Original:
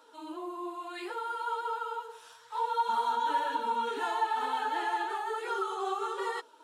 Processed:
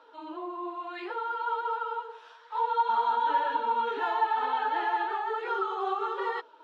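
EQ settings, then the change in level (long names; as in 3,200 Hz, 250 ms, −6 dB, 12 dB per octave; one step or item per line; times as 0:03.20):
high-pass filter 350 Hz 12 dB per octave
high-frequency loss of the air 260 metres
+4.5 dB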